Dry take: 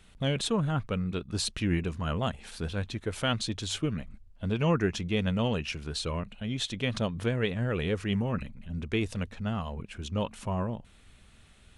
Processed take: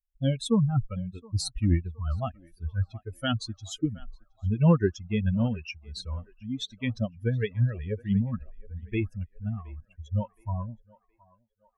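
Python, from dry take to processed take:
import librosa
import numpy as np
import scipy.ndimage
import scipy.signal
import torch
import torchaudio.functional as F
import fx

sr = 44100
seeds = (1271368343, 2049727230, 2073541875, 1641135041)

p1 = fx.bin_expand(x, sr, power=3.0)
p2 = fx.low_shelf(p1, sr, hz=340.0, db=10.5)
p3 = p2 + fx.echo_banded(p2, sr, ms=719, feedback_pct=57, hz=950.0, wet_db=-20, dry=0)
y = p3 * librosa.db_to_amplitude(2.5)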